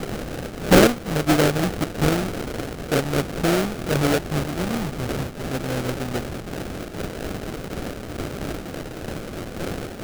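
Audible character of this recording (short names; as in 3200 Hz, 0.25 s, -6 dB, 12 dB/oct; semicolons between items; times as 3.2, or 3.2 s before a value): a quantiser's noise floor 6-bit, dither triangular; phasing stages 4, 0.35 Hz, lowest notch 530–1900 Hz; aliases and images of a low sample rate 1000 Hz, jitter 20%; noise-modulated level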